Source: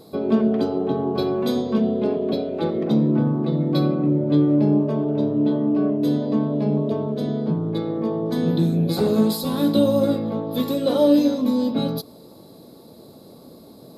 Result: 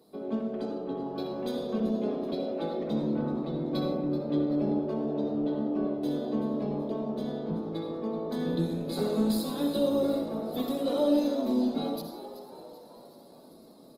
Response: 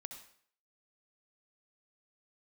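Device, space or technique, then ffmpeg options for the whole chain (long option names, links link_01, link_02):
far-field microphone of a smart speaker: -filter_complex "[0:a]asplit=6[link_01][link_02][link_03][link_04][link_05][link_06];[link_02]adelay=381,afreqshift=81,volume=-14dB[link_07];[link_03]adelay=762,afreqshift=162,volume=-19.4dB[link_08];[link_04]adelay=1143,afreqshift=243,volume=-24.7dB[link_09];[link_05]adelay=1524,afreqshift=324,volume=-30.1dB[link_10];[link_06]adelay=1905,afreqshift=405,volume=-35.4dB[link_11];[link_01][link_07][link_08][link_09][link_10][link_11]amix=inputs=6:normalize=0[link_12];[1:a]atrim=start_sample=2205[link_13];[link_12][link_13]afir=irnorm=-1:irlink=0,highpass=frequency=160:width=0.5412,highpass=frequency=160:width=1.3066,dynaudnorm=framelen=160:gausssize=21:maxgain=4dB,volume=-8dB" -ar 48000 -c:a libopus -b:a 20k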